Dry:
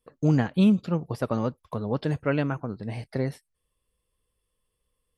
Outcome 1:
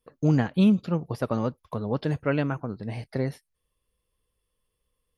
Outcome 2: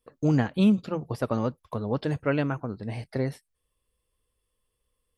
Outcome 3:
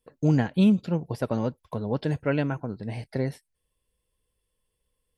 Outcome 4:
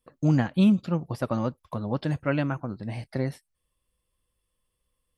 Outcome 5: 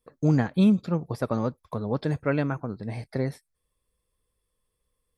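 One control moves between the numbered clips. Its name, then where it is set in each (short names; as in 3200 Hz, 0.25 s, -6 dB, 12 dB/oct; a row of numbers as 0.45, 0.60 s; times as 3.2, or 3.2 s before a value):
notch, frequency: 7900, 170, 1200, 440, 2900 Hz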